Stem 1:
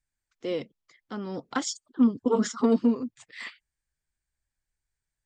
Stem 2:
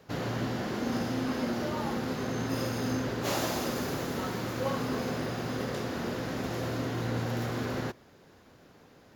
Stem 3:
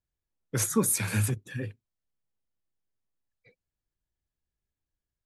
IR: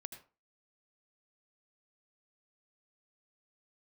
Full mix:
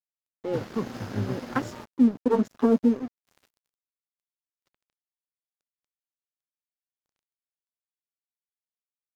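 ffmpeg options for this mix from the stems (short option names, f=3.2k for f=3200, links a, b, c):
-filter_complex "[0:a]afwtdn=0.0224,volume=2dB[a];[1:a]volume=-4dB[b];[2:a]acompressor=mode=upward:threshold=-51dB:ratio=2.5,lowpass=f=1.3k:w=0.5412,lowpass=f=1.3k:w=1.3066,volume=-2.5dB,asplit=2[c][d];[d]apad=whole_len=403773[e];[b][e]sidechaingate=range=-14dB:threshold=-57dB:ratio=16:detection=peak[f];[a][f][c]amix=inputs=3:normalize=0,aeval=exprs='sgn(val(0))*max(abs(val(0))-0.01,0)':c=same"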